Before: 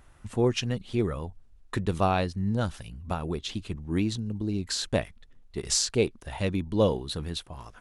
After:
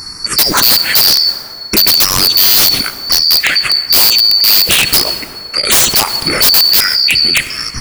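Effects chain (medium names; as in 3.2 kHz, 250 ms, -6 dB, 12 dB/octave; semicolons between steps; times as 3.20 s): four frequency bands reordered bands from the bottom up 2341; touch-sensitive phaser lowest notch 540 Hz, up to 4.6 kHz, full sweep at -19.5 dBFS; integer overflow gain 26 dB; plate-style reverb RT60 2.5 s, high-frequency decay 0.45×, DRR 16.5 dB; loudness maximiser +35.5 dB; trim -1 dB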